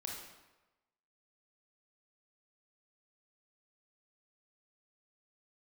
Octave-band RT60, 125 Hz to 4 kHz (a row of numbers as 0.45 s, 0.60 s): 1.0 s, 0.95 s, 1.1 s, 1.1 s, 0.95 s, 0.80 s